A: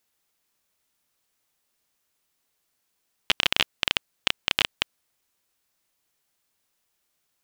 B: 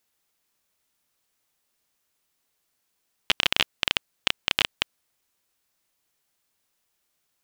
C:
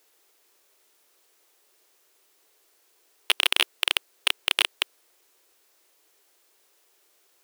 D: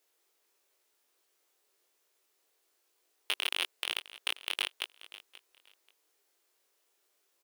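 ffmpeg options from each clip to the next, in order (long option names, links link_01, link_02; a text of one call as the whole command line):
ffmpeg -i in.wav -af anull out.wav
ffmpeg -i in.wav -af "apsyclip=17dB,lowshelf=frequency=260:width_type=q:width=3:gain=-13,volume=-6.5dB" out.wav
ffmpeg -i in.wav -af "aecho=1:1:533|1066:0.133|0.0293,flanger=delay=19:depth=3.1:speed=0.99,volume=-7.5dB" out.wav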